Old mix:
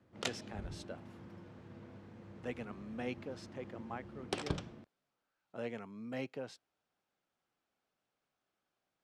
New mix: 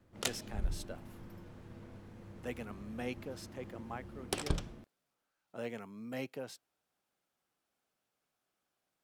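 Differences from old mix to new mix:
background: remove HPF 100 Hz; master: remove air absorption 80 m

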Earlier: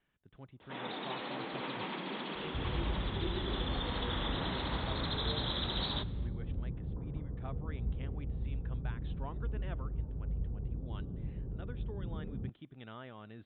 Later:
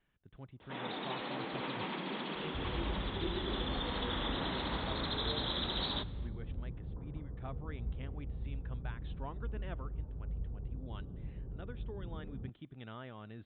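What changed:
second sound: add low shelf 460 Hz -8 dB; master: add low shelf 98 Hz +6.5 dB

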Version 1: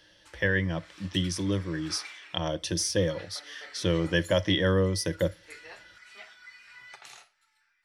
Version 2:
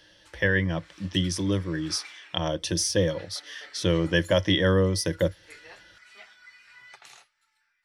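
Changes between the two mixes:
speech +3.0 dB; reverb: off

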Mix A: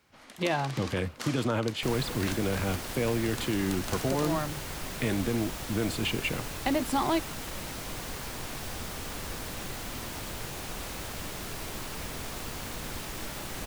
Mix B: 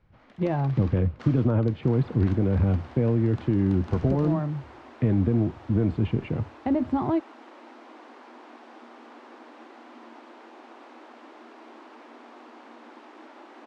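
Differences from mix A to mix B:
speech: add tilt -3.5 dB/oct; second sound: add rippled Chebyshev high-pass 230 Hz, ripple 6 dB; master: add tape spacing loss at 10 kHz 34 dB

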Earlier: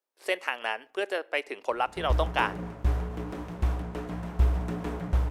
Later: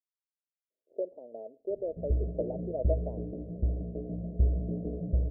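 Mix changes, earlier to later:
speech: entry +0.70 s; master: add rippled Chebyshev low-pass 660 Hz, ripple 3 dB

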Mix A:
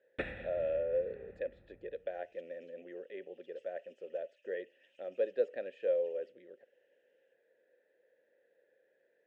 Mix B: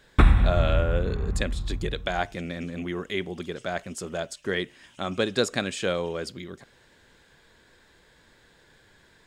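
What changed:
speech: remove band-pass 520 Hz, Q 0.78; master: remove vowel filter e

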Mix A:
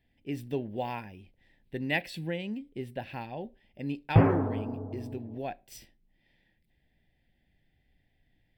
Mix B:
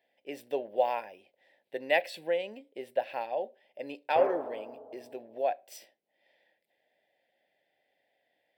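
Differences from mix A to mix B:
background -9.0 dB; master: add resonant high-pass 570 Hz, resonance Q 3.6

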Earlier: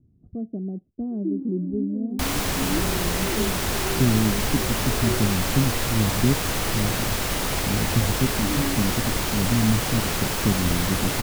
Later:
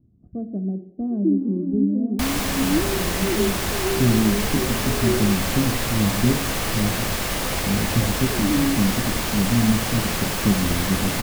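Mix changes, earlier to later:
speech: remove air absorption 490 m; first sound +7.0 dB; reverb: on, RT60 0.80 s

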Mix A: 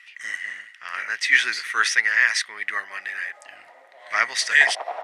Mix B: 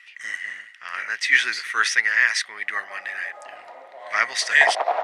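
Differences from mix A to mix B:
background +8.5 dB; master: add high shelf 12000 Hz -4.5 dB

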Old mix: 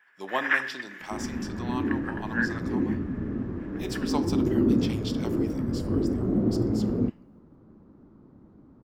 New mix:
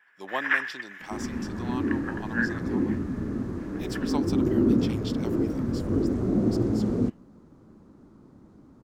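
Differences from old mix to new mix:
speech: send off; second sound: remove tape spacing loss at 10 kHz 26 dB

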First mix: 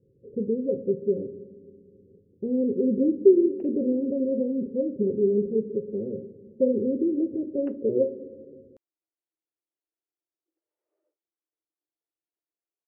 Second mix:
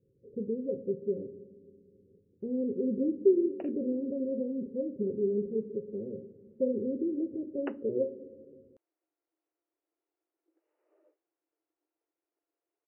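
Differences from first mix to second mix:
speech -7.0 dB; background +12.0 dB

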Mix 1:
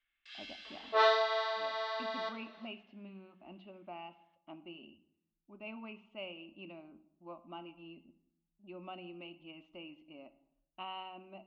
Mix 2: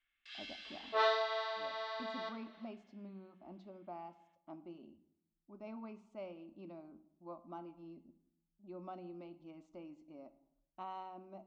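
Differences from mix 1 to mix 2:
speech: remove synth low-pass 2800 Hz, resonance Q 12; second sound -4.5 dB

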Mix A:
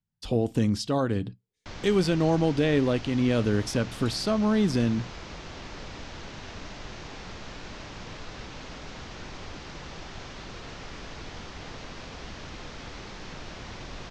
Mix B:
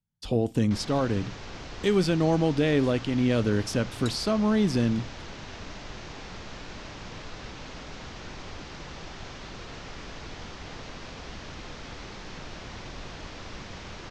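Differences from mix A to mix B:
first sound: entry -0.95 s; second sound +11.5 dB

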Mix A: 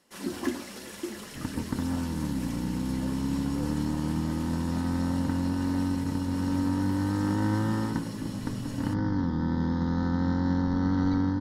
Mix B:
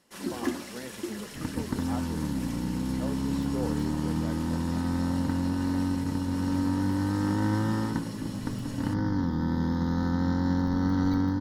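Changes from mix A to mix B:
speech +9.0 dB; second sound: remove air absorption 63 m

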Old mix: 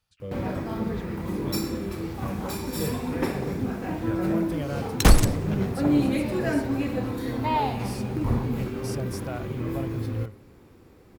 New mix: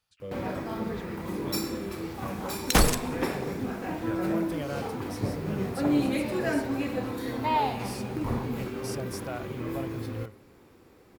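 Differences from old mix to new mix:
second sound: entry -2.30 s; master: add low shelf 210 Hz -9 dB

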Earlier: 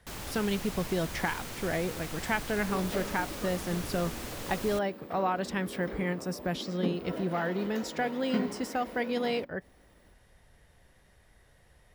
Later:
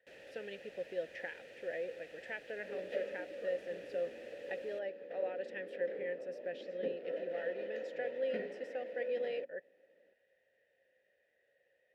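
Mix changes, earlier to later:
speech: add low shelf 140 Hz -10 dB; second sound +5.5 dB; master: add vowel filter e

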